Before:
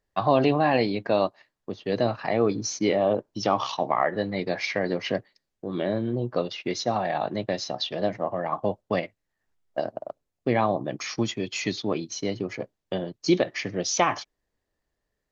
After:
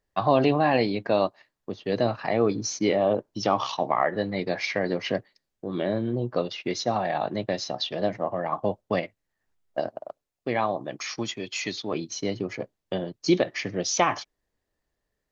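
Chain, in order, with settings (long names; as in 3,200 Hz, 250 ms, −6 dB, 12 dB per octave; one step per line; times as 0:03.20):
0:09.88–0:11.93: low-shelf EQ 410 Hz −8 dB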